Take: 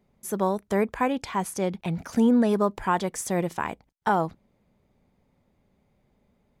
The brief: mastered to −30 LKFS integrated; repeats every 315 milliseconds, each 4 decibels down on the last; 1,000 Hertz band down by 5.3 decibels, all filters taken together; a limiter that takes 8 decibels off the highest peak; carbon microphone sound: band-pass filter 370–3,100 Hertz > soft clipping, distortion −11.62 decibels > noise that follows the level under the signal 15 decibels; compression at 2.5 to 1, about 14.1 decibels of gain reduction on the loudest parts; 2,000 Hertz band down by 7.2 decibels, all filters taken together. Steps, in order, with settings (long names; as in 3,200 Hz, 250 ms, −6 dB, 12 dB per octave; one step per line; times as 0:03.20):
parametric band 1,000 Hz −5 dB
parametric band 2,000 Hz −7 dB
downward compressor 2.5 to 1, threshold −39 dBFS
brickwall limiter −31 dBFS
band-pass filter 370–3,100 Hz
repeating echo 315 ms, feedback 63%, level −4 dB
soft clipping −40 dBFS
noise that follows the level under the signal 15 dB
level +17.5 dB